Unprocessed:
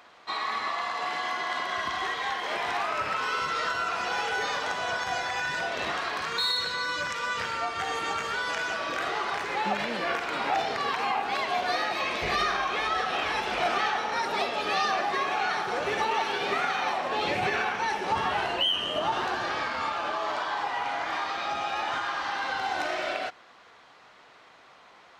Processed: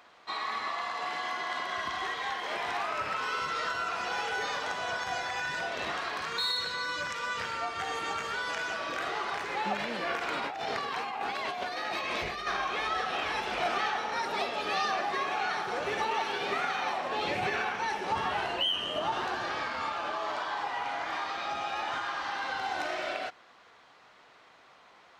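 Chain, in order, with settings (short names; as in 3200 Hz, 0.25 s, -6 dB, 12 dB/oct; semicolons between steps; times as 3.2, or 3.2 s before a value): 10.21–12.47 negative-ratio compressor -31 dBFS, ratio -1; gain -3.5 dB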